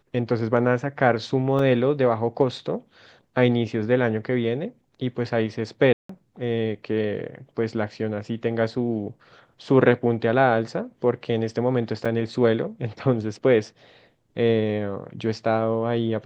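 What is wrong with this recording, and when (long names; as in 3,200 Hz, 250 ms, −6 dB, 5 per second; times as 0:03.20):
0:01.59: drop-out 2.7 ms
0:05.93–0:06.09: drop-out 164 ms
0:12.05: drop-out 5 ms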